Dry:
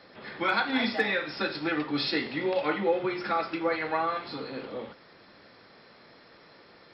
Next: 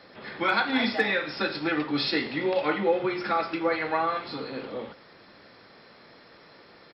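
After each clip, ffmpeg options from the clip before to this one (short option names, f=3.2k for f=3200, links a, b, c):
-af "aecho=1:1:112:0.0794,volume=2dB"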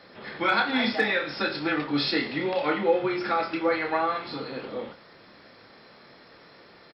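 -filter_complex "[0:a]asplit=2[a][b];[b]adelay=28,volume=-7.5dB[c];[a][c]amix=inputs=2:normalize=0"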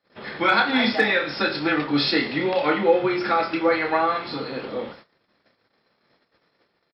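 -af "agate=range=-30dB:threshold=-48dB:ratio=16:detection=peak,volume=4.5dB"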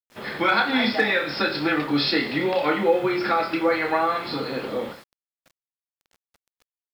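-filter_complex "[0:a]asplit=2[a][b];[b]acompressor=threshold=-26dB:ratio=6,volume=1dB[c];[a][c]amix=inputs=2:normalize=0,acrusher=bits=7:mix=0:aa=0.000001,volume=-4dB"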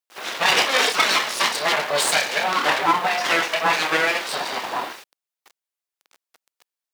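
-af "aeval=exprs='abs(val(0))':c=same,highpass=400,volume=7.5dB"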